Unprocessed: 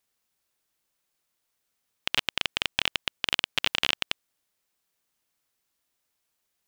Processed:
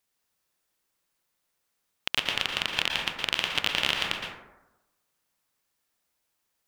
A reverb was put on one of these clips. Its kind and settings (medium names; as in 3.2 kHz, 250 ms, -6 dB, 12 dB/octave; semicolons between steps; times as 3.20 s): plate-style reverb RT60 1 s, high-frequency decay 0.35×, pre-delay 105 ms, DRR 0.5 dB; trim -1 dB